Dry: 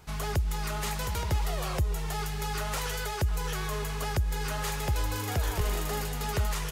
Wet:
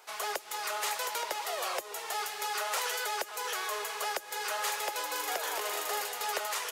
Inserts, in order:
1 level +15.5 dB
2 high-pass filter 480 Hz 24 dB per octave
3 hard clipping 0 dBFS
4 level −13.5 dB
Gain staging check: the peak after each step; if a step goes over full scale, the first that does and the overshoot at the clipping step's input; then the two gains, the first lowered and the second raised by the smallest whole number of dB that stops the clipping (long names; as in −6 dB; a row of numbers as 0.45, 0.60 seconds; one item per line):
−2.0, −5.0, −5.0, −18.5 dBFS
no step passes full scale